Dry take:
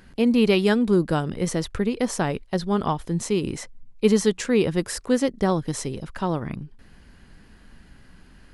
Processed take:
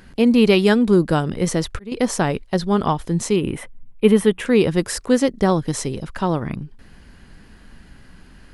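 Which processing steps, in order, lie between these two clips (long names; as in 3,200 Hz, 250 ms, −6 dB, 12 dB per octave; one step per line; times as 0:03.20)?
0:01.40–0:01.92: volume swells 403 ms
0:03.36–0:04.46: flat-topped bell 5,600 Hz −15.5 dB 1.1 octaves
level +4.5 dB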